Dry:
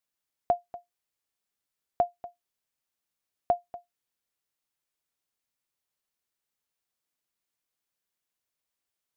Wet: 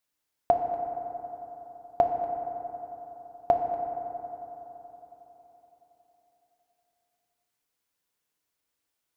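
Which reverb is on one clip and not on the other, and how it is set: FDN reverb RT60 4 s, high-frequency decay 0.3×, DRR 3 dB; gain +3.5 dB

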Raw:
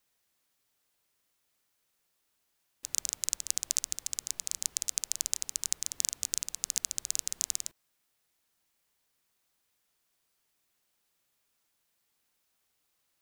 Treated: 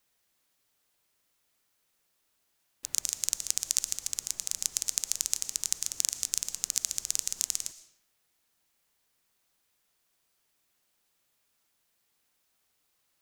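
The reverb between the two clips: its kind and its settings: digital reverb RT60 0.75 s, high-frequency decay 0.85×, pre-delay 75 ms, DRR 13.5 dB; gain +2 dB

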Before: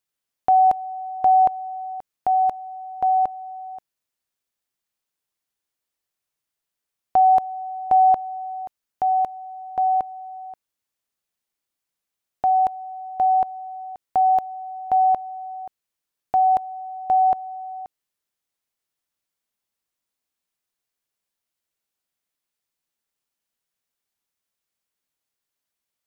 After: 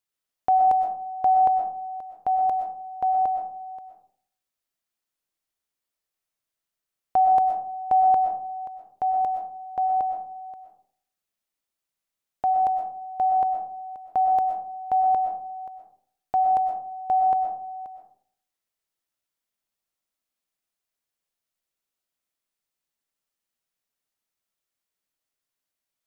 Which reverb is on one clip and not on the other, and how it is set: digital reverb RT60 0.56 s, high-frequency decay 0.35×, pre-delay 80 ms, DRR 4 dB; gain -3.5 dB

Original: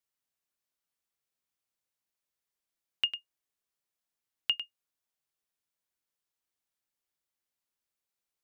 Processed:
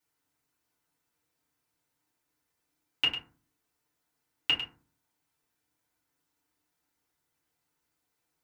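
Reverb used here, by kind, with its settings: FDN reverb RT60 0.38 s, low-frequency decay 1.6×, high-frequency decay 0.4×, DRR -9.5 dB; gain +1 dB

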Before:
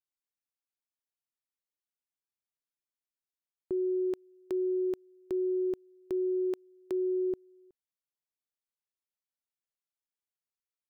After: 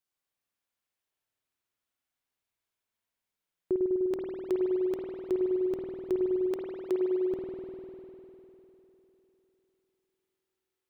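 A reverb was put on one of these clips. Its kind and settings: spring tank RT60 3.5 s, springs 50 ms, chirp 35 ms, DRR -3 dB; gain +4.5 dB

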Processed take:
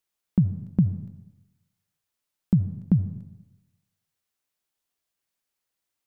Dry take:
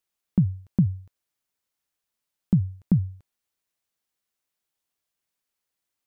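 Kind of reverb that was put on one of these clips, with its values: digital reverb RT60 1 s, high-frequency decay 0.85×, pre-delay 35 ms, DRR 12.5 dB

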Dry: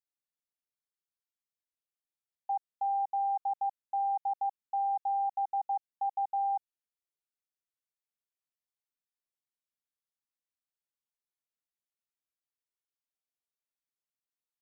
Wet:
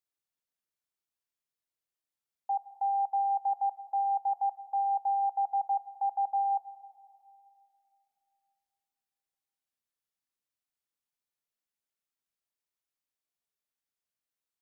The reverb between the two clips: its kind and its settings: plate-style reverb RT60 2.7 s, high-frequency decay 0.85×, DRR 13 dB; gain +1 dB

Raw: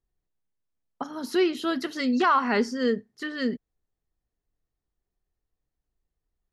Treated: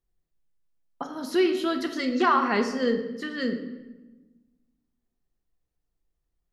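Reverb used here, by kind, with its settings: shoebox room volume 670 m³, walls mixed, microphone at 0.8 m; gain -1 dB

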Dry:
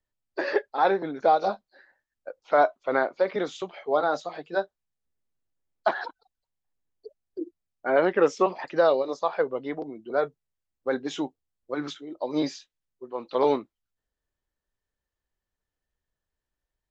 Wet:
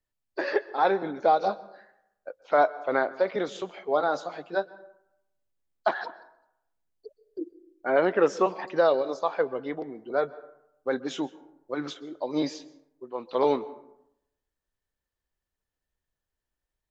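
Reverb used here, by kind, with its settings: plate-style reverb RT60 0.81 s, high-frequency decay 0.45×, pre-delay 0.115 s, DRR 18.5 dB; gain -1 dB

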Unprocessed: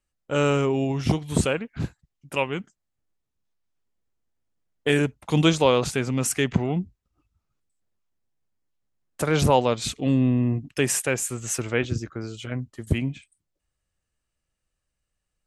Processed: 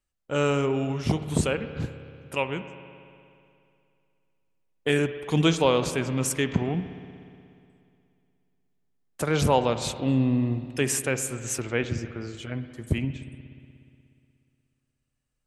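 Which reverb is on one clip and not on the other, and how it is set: spring tank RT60 2.5 s, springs 60 ms, chirp 70 ms, DRR 10.5 dB; gain -2.5 dB

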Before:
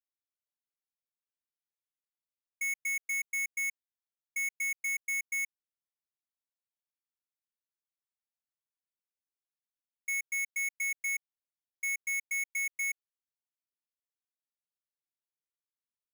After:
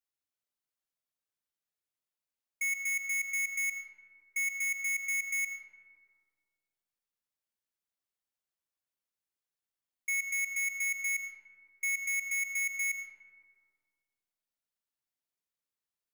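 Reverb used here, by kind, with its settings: digital reverb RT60 2.2 s, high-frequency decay 0.35×, pre-delay 45 ms, DRR 7.5 dB; gain +1 dB

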